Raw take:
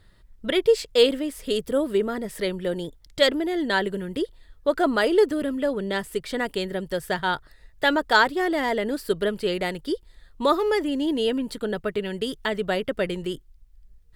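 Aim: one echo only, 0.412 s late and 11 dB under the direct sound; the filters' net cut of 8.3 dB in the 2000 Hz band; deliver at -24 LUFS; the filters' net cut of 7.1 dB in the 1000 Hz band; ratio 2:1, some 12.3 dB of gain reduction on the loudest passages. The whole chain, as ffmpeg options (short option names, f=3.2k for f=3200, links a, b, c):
-af "equalizer=f=1k:t=o:g=-7.5,equalizer=f=2k:t=o:g=-8,acompressor=threshold=-38dB:ratio=2,aecho=1:1:412:0.282,volume=11.5dB"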